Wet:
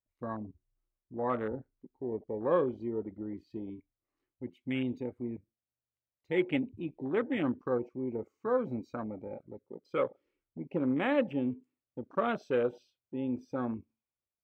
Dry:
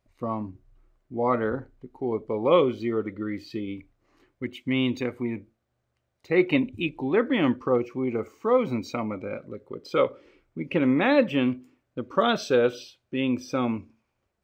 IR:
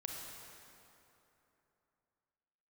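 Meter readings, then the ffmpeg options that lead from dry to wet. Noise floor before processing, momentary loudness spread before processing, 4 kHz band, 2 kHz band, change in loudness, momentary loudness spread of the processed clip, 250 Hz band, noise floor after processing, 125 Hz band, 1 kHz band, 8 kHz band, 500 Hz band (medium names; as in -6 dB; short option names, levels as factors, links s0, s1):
-77 dBFS, 16 LU, -15.0 dB, -10.0 dB, -8.0 dB, 16 LU, -8.0 dB, under -85 dBFS, -8.0 dB, -8.5 dB, no reading, -8.0 dB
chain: -af "afwtdn=0.0316,volume=0.398"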